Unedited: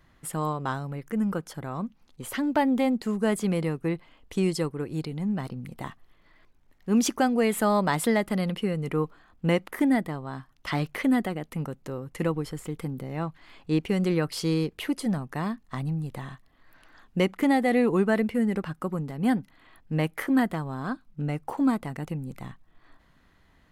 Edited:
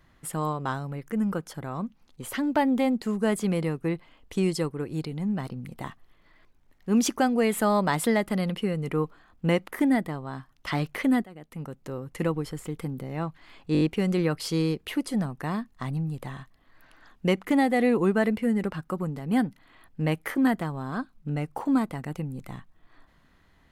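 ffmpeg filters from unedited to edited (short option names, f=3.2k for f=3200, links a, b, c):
-filter_complex "[0:a]asplit=6[a][b][c][d][e][f];[a]atrim=end=11.24,asetpts=PTS-STARTPTS,afade=t=out:st=11.236:d=0.004:c=hsin:silence=0.1[g];[b]atrim=start=11.24:end=13.752,asetpts=PTS-STARTPTS,afade=t=in:d=0.73:silence=0.1[h];[c]atrim=start=13.728:end=13.752[i];[d]atrim=start=13.728:end=13.752[j];[e]atrim=start=13.728:end=13.752[k];[f]atrim=start=13.728[l];[g][h]concat=n=2:v=0:a=1[m];[m][i]acrossfade=d=0.004:c1=hsin:c2=hsin[n];[n][j]acrossfade=d=0.004:c1=hsin:c2=hsin[o];[o][k]acrossfade=d=0.004:c1=hsin:c2=hsin[p];[p][l]acrossfade=d=0.004:c1=hsin:c2=hsin"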